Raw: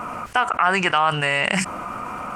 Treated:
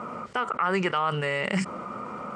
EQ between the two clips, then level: dynamic bell 680 Hz, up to -5 dB, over -36 dBFS, Q 2.8; cabinet simulation 280–8000 Hz, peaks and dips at 300 Hz -10 dB, 720 Hz -9 dB, 1 kHz -7 dB, 1.6 kHz -9 dB, 2.6 kHz -9 dB, 6.2 kHz -4 dB; tilt EQ -3 dB/octave; 0.0 dB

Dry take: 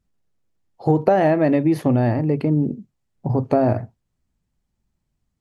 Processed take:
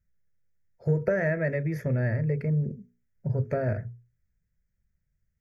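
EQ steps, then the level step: hum notches 60/120/180/240/300/360/420/480 Hz; static phaser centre 1.1 kHz, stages 6; static phaser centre 2.9 kHz, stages 6; 0.0 dB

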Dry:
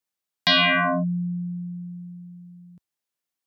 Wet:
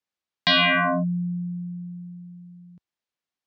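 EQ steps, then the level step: low-pass 5 kHz 12 dB/octave; 0.0 dB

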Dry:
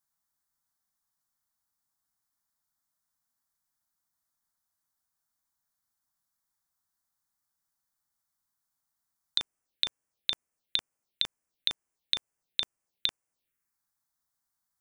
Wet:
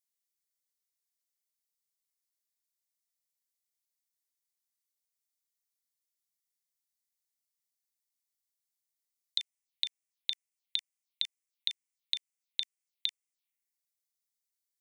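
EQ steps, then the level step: elliptic high-pass 2 kHz; -3.5 dB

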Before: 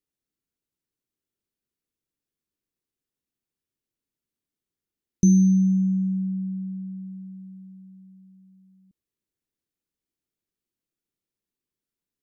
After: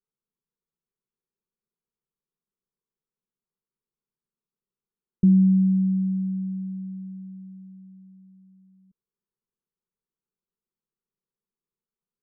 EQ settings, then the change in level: low-pass 1.5 kHz 24 dB/octave; static phaser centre 440 Hz, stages 8; 0.0 dB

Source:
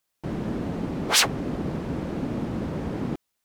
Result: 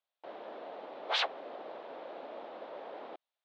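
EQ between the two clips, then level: ladder high-pass 520 Hz, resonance 45%; four-pole ladder low-pass 4.2 kHz, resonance 55%; treble shelf 2.2 kHz -10 dB; +9.5 dB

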